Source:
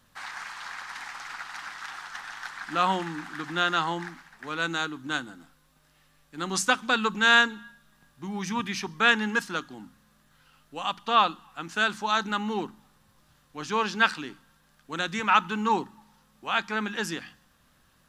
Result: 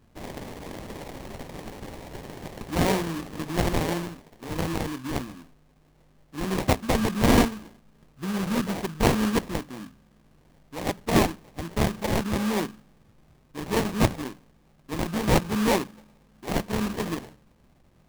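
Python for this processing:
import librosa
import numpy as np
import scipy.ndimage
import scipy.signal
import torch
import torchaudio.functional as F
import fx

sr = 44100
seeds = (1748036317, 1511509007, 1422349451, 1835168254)

y = fx.low_shelf(x, sr, hz=390.0, db=7.0)
y = fx.sample_hold(y, sr, seeds[0], rate_hz=1400.0, jitter_pct=20)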